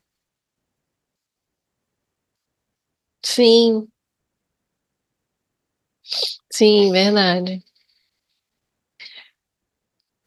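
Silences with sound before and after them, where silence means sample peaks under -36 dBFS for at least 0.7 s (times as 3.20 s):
3.85–6.07 s
7.59–9.00 s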